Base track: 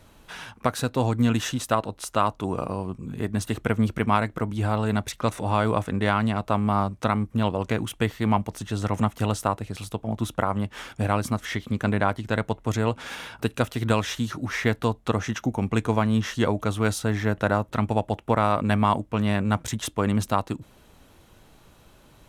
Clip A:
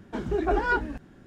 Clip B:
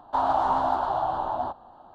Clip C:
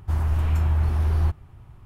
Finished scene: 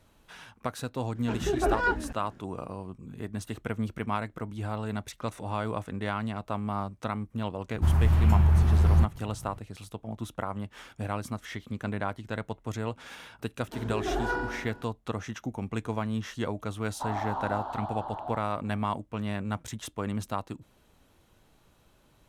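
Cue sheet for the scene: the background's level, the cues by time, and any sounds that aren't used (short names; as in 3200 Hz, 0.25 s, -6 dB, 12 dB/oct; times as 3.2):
base track -9 dB
1.15 add A -1.5 dB
7.74 add C -0.5 dB + bell 160 Hz +8 dB
13.59 add A -9 dB + flutter echo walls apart 7.4 m, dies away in 1.1 s
16.87 add B -10 dB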